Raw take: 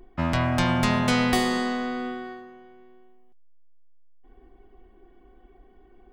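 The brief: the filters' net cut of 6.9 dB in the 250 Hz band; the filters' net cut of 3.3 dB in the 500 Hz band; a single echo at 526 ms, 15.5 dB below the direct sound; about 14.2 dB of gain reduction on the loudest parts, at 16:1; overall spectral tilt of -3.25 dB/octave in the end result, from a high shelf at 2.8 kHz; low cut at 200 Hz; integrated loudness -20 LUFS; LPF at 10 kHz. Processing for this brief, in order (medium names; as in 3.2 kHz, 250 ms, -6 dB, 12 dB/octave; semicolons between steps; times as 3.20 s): high-pass 200 Hz; low-pass 10 kHz; peaking EQ 250 Hz -5 dB; peaking EQ 500 Hz -3 dB; treble shelf 2.8 kHz +6.5 dB; compression 16:1, threshold -33 dBFS; delay 526 ms -15.5 dB; trim +17 dB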